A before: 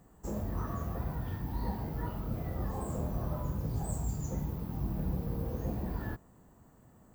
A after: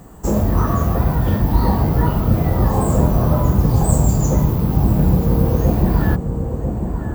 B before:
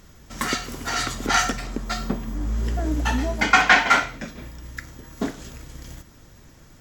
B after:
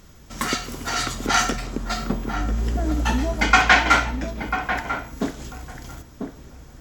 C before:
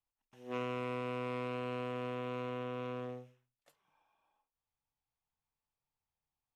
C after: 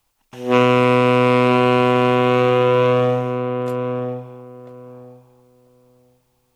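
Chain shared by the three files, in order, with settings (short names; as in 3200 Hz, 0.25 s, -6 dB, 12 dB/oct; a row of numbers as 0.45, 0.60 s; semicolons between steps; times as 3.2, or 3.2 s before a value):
bell 1800 Hz -2.5 dB 0.32 oct; darkening echo 0.993 s, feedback 18%, low-pass 1000 Hz, level -5.5 dB; normalise peaks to -2 dBFS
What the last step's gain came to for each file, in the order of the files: +19.0, +1.0, +24.0 dB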